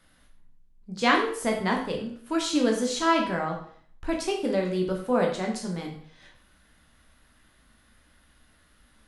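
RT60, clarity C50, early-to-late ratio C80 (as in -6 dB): 0.55 s, 6.5 dB, 9.5 dB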